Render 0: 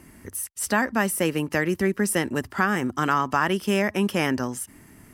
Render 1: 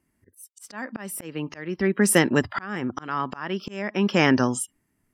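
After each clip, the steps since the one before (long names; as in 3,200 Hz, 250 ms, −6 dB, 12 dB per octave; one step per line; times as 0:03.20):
noise reduction from a noise print of the clip's start 29 dB
volume swells 620 ms
level +6 dB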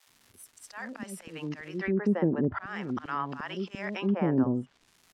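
surface crackle 520 per second −43 dBFS
multiband delay without the direct sound highs, lows 70 ms, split 540 Hz
treble cut that deepens with the level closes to 710 Hz, closed at −18 dBFS
level −4 dB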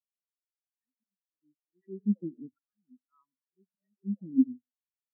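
convolution reverb RT60 0.60 s, pre-delay 58 ms, DRR 12 dB
every bin expanded away from the loudest bin 4 to 1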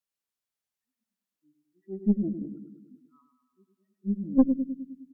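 on a send: repeating echo 103 ms, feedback 60%, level −7 dB
on the sum: tube saturation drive 17 dB, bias 0.6
level +7 dB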